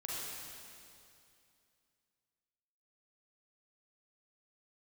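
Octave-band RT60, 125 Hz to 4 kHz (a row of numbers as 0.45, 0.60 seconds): 2.8, 2.7, 2.6, 2.5, 2.4, 2.4 seconds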